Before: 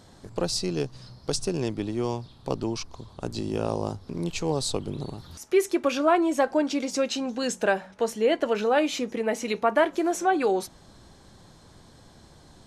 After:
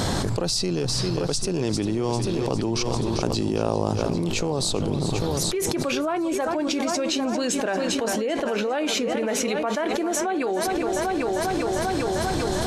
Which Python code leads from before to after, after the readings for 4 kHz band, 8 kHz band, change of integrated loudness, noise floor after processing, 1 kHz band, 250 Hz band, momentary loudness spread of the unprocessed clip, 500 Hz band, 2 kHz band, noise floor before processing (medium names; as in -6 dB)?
+6.5 dB, +7.5 dB, +2.0 dB, -26 dBFS, +1.0 dB, +3.5 dB, 12 LU, +1.5 dB, +1.5 dB, -53 dBFS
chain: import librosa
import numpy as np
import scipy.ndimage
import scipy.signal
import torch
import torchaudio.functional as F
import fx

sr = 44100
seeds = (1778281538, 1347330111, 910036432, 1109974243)

y = fx.echo_heads(x, sr, ms=398, heads='first and second', feedback_pct=46, wet_db=-15.0)
y = fx.env_flatten(y, sr, amount_pct=100)
y = F.gain(torch.from_numpy(y), -8.5).numpy()